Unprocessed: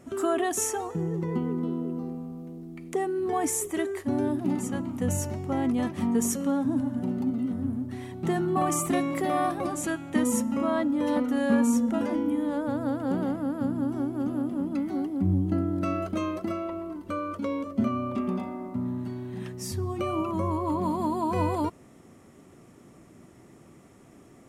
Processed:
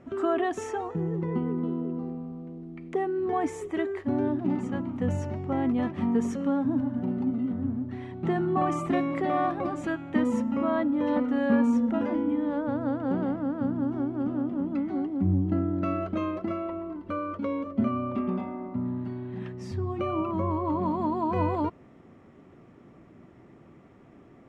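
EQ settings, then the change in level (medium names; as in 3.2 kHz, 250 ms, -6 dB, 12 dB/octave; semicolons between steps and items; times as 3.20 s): low-pass 2.7 kHz 12 dB/octave; 0.0 dB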